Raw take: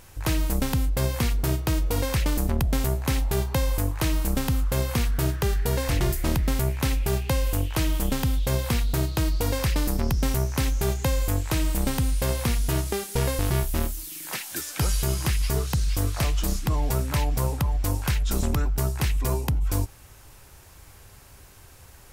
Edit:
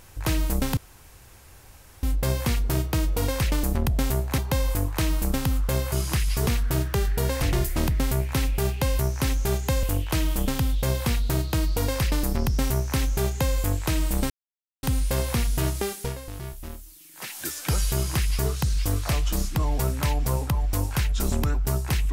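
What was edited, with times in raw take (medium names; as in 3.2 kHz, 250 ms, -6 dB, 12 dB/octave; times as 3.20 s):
0.77 s: insert room tone 1.26 s
3.12–3.41 s: delete
10.35–11.19 s: copy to 7.47 s
11.94 s: insert silence 0.53 s
13.04–14.48 s: dip -12 dB, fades 0.23 s
15.05–15.60 s: copy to 4.95 s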